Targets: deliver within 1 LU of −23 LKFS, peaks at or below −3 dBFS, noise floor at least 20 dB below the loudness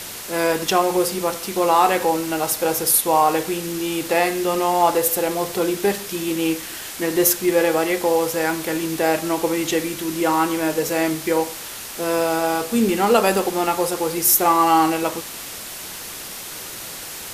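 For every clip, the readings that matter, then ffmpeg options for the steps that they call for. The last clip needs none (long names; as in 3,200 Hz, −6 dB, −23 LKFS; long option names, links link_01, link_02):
background noise floor −34 dBFS; target noise floor −40 dBFS; integrated loudness −19.5 LKFS; sample peak −2.0 dBFS; target loudness −23.0 LKFS
→ -af "afftdn=noise_reduction=6:noise_floor=-34"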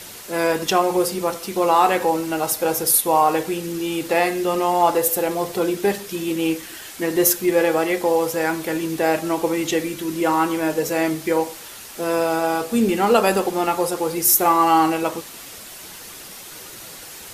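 background noise floor −38 dBFS; target noise floor −40 dBFS
→ -af "afftdn=noise_reduction=6:noise_floor=-38"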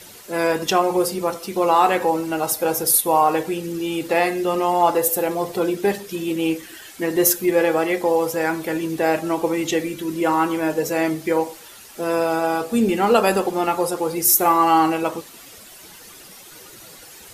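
background noise floor −43 dBFS; integrated loudness −20.0 LKFS; sample peak −2.0 dBFS; target loudness −23.0 LKFS
→ -af "volume=-3dB"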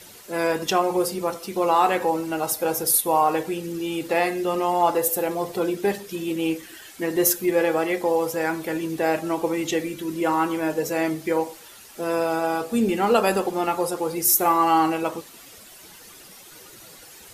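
integrated loudness −23.0 LKFS; sample peak −5.0 dBFS; background noise floor −46 dBFS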